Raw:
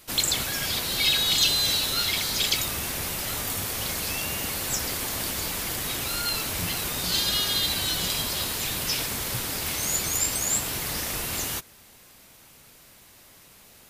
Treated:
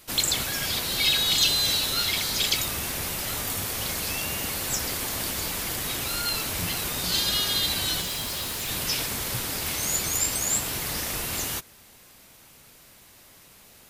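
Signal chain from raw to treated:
0:08.01–0:08.69: gain into a clipping stage and back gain 28 dB

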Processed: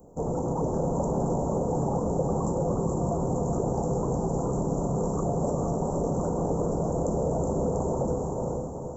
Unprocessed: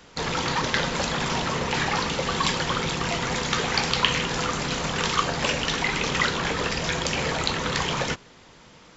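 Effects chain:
inverse Chebyshev band-stop filter 1,900–4,300 Hz, stop band 70 dB
tilt shelving filter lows −4.5 dB, about 1,100 Hz
feedback delay with all-pass diffusion 450 ms, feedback 50%, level −3 dB
in parallel at +2 dB: brickwall limiter −26 dBFS, peak gain reduction 8 dB
on the sum: level −1 dB

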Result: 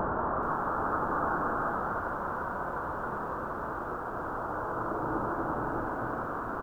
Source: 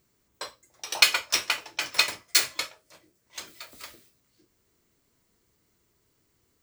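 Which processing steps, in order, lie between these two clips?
linear delta modulator 32 kbit/s, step −17.5 dBFS
far-end echo of a speakerphone 400 ms, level −22 dB
formants moved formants +5 semitones
Butterworth low-pass 1,500 Hz 96 dB per octave
harmonic and percussive parts rebalanced harmonic −16 dB
transient designer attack −1 dB, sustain +8 dB
extreme stretch with random phases 5.6×, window 0.50 s, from 0:00.80
feedback echo at a low word length 430 ms, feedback 35%, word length 9 bits, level −12 dB

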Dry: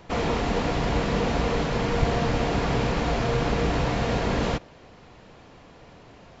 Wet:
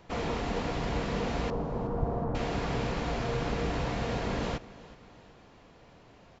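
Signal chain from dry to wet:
0:01.50–0:02.35: low-pass filter 1,100 Hz 24 dB per octave
repeating echo 371 ms, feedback 46%, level −19 dB
level −7 dB

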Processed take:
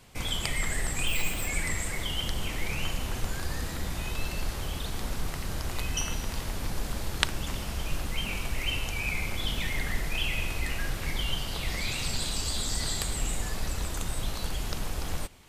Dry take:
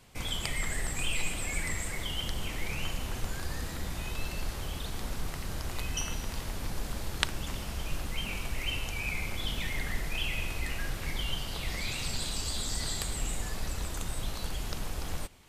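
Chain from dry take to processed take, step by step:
0:01.07–0:01.48: bad sample-rate conversion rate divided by 2×, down filtered, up hold
level +3 dB

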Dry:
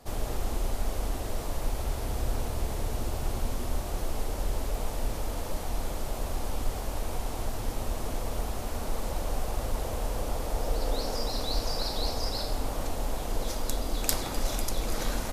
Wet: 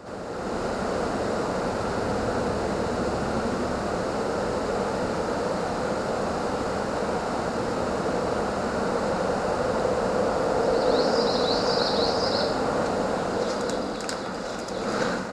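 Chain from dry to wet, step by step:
automatic gain control gain up to 9 dB
loudspeaker in its box 160–6,700 Hz, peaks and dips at 190 Hz +8 dB, 490 Hz +6 dB, 1,400 Hz +8 dB, 2,300 Hz −4 dB, 3,300 Hz −10 dB, 6,000 Hz −8 dB
backwards echo 86 ms −7 dB

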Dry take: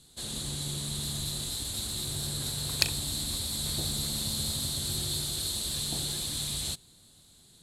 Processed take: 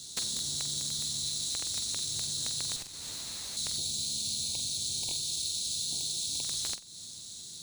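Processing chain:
flat-topped bell 5,900 Hz +16 dB
bad sample-rate conversion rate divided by 3×, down none, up hold
high-pass filter 71 Hz 12 dB per octave
downward compressor 12 to 1, threshold −31 dBFS, peak gain reduction 28 dB
wrap-around overflow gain 23 dB
low-shelf EQ 460 Hz +3.5 dB
flutter between parallel walls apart 7.8 metres, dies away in 0.25 s
0:02.76–0:03.57: tube saturation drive 35 dB, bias 0.65
0:03.78–0:06.43: time-frequency box erased 1,000–2,200 Hz
Opus 128 kbit/s 48,000 Hz

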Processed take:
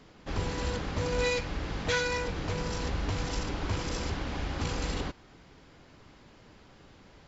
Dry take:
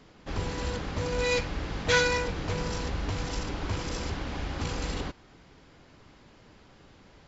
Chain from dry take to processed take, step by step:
0:01.28–0:02.82: downward compressor 2 to 1, threshold −29 dBFS, peak gain reduction 6.5 dB

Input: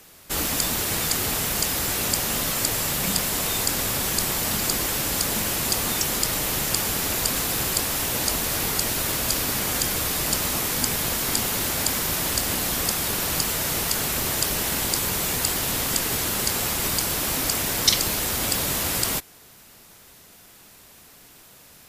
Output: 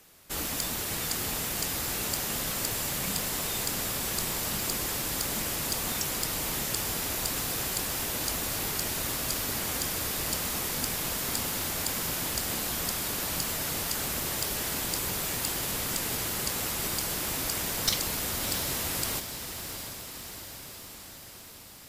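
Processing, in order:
wavefolder on the positive side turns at −11.5 dBFS
feedback delay with all-pass diffusion 693 ms, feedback 65%, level −8.5 dB
level −7.5 dB

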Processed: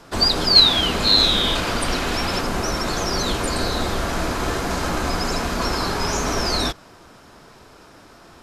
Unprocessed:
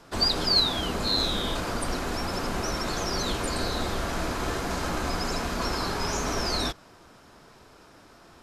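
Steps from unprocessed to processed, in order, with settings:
0:00.55–0:02.41: parametric band 3,000 Hz +7 dB 1.4 octaves
level +6 dB

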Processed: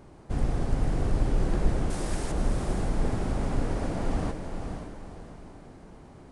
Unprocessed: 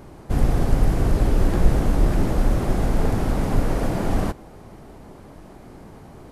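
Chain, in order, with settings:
downsampling to 22,050 Hz
0:01.90–0:02.32: RIAA equalisation recording
feedback delay with all-pass diffusion 507 ms, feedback 41%, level −6 dB
level −8 dB

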